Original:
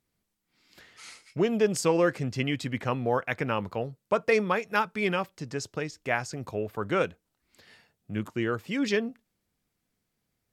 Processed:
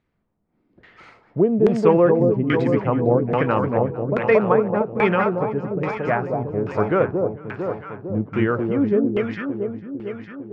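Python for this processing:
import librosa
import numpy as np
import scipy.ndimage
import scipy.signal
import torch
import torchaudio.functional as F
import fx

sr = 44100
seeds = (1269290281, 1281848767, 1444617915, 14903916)

y = fx.echo_alternate(x, sr, ms=226, hz=1000.0, feedback_pct=79, wet_db=-3)
y = fx.filter_lfo_lowpass(y, sr, shape='saw_down', hz=1.2, low_hz=350.0, high_hz=2400.0, q=0.87)
y = y * librosa.db_to_amplitude(7.5)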